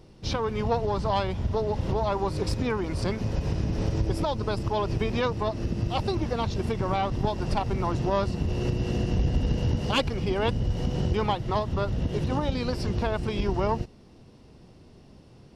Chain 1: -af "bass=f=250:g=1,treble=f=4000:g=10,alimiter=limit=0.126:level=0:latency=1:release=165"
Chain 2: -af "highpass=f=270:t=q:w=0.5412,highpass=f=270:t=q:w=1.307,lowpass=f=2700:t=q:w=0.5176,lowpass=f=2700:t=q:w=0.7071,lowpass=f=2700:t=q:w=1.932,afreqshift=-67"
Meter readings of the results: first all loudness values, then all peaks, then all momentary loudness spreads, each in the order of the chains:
-29.5 LUFS, -31.5 LUFS; -18.0 dBFS, -13.0 dBFS; 2 LU, 8 LU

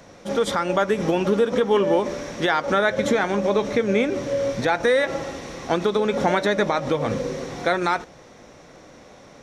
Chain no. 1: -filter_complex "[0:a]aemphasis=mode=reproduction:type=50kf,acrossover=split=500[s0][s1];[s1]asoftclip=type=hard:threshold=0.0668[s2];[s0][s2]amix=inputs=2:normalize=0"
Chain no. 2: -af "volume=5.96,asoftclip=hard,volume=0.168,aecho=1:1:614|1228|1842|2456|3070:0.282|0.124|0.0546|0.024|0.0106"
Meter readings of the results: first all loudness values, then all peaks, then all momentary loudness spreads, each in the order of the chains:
-23.5 LUFS, -23.0 LUFS; -10.5 dBFS, -12.5 dBFS; 8 LU, 13 LU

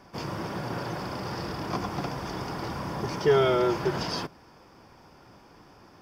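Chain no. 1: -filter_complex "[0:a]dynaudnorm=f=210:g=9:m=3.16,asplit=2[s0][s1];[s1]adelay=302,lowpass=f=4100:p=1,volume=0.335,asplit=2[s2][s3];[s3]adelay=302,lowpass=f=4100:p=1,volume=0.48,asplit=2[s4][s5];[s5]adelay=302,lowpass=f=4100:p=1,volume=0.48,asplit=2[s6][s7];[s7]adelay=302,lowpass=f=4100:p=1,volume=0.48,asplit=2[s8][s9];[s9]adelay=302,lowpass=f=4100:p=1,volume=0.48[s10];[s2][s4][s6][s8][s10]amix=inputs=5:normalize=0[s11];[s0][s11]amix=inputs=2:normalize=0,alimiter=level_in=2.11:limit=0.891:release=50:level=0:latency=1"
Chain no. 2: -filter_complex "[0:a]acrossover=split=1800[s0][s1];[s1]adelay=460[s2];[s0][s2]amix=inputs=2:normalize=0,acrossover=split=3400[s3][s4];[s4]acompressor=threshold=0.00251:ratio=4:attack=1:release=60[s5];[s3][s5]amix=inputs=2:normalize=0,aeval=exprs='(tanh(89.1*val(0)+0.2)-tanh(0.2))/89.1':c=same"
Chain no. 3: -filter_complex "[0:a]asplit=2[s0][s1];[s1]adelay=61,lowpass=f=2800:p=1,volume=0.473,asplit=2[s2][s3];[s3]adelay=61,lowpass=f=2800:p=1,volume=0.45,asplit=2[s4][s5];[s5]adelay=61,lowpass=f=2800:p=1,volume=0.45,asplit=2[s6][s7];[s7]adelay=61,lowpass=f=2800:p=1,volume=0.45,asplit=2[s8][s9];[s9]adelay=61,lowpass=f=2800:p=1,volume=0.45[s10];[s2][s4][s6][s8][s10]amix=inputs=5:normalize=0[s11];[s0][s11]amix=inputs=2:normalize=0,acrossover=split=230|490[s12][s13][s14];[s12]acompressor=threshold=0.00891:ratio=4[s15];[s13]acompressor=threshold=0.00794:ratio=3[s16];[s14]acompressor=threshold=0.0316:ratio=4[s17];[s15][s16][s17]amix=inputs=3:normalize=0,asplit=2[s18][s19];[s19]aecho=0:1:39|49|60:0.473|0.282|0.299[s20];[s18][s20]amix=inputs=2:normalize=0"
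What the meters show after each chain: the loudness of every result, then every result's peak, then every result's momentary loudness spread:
-15.0 LUFS, -41.5 LUFS, -32.0 LUFS; -1.0 dBFS, -37.5 dBFS, -16.0 dBFS; 18 LU, 15 LU, 22 LU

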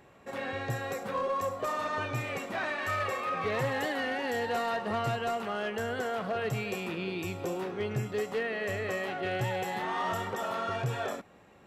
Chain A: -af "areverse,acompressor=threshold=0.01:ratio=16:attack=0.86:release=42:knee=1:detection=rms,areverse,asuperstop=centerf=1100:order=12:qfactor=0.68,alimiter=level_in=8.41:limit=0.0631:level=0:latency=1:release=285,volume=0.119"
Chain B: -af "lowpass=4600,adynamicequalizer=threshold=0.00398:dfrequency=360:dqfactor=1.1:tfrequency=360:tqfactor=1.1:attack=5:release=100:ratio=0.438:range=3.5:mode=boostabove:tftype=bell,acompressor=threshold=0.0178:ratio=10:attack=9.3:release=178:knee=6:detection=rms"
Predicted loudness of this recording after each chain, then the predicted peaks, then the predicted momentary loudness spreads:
-51.5 LUFS, -39.0 LUFS; -42.5 dBFS, -27.0 dBFS; 3 LU, 1 LU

